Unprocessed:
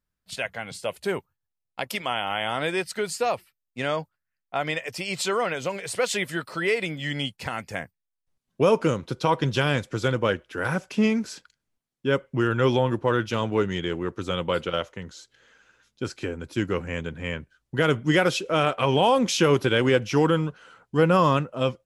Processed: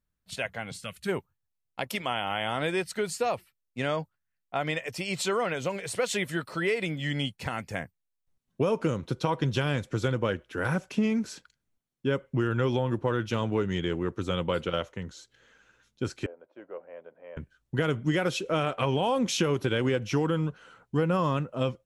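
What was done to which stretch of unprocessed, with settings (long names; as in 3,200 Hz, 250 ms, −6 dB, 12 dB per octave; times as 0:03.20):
0:00.80–0:01.09: gain on a spectral selection 240–1,100 Hz −13 dB
0:16.26–0:17.37: four-pole ladder band-pass 670 Hz, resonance 65%
whole clip: low-shelf EQ 320 Hz +5 dB; notch filter 4,900 Hz, Q 18; downward compressor, threshold −19 dBFS; level −3 dB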